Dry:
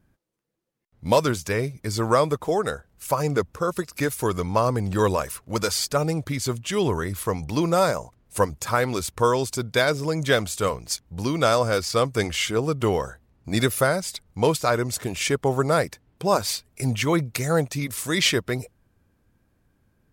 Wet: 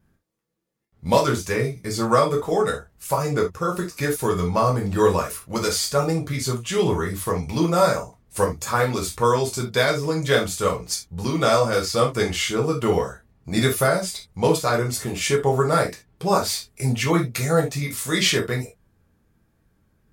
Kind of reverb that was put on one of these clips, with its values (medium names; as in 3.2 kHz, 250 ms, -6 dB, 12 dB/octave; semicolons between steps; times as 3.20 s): gated-style reverb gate 100 ms falling, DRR -1 dB; trim -2 dB